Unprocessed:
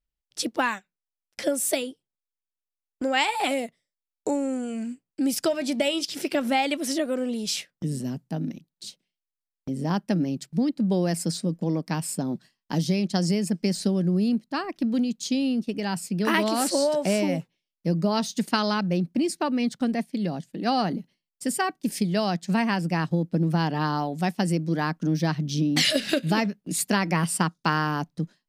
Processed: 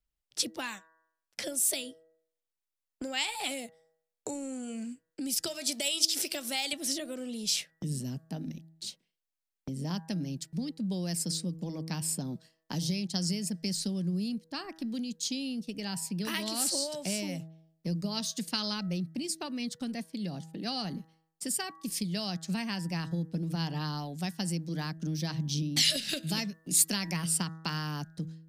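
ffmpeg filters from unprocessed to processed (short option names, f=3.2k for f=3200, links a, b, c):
-filter_complex "[0:a]asettb=1/sr,asplit=3[a][b][c];[a]atrim=end=5.474[d];[b]atrim=start=5.47:end=6.73,asetpts=PTS-STARTPTS,afade=t=in:d=0.004:c=qsin,afade=t=out:st=1.256:d=0.004:c=qsin,bass=f=250:g=-11,treble=f=4k:g=8[e];[c]atrim=start=6.726[f];[d][e]acrossfade=d=0.004:c1=hsin:c2=qsin[g];[g][f]acrossfade=d=0.004:c1=qsin:c2=hsin,asettb=1/sr,asplit=3[h][i][j];[h]atrim=end=26.274[k];[i]atrim=start=26.27:end=27.17,asetpts=PTS-STARTPTS,afade=t=in:d=0.004:c=qsin,afade=t=out:st=0.896:d=0.004:c=qsin,highshelf=f=4.8k:g=5[l];[j]atrim=start=27.166[m];[k][l]acrossfade=d=0.004:c1=hsin:c2=qsin[n];[n][m]acrossfade=d=0.004:c1=qsin:c2=hsin,bandreject=f=161.1:t=h:w=4,bandreject=f=322.2:t=h:w=4,bandreject=f=483.3:t=h:w=4,bandreject=f=644.4:t=h:w=4,bandreject=f=805.5:t=h:w=4,bandreject=f=966.6:t=h:w=4,bandreject=f=1.1277k:t=h:w=4,bandreject=f=1.2888k:t=h:w=4,bandreject=f=1.4499k:t=h:w=4,bandreject=f=1.611k:t=h:w=4,bandreject=f=1.7721k:t=h:w=4,bandreject=f=1.9332k:t=h:w=4,acrossover=split=140|3000[o][p][q];[p]acompressor=threshold=-42dB:ratio=3[r];[o][r][q]amix=inputs=3:normalize=0"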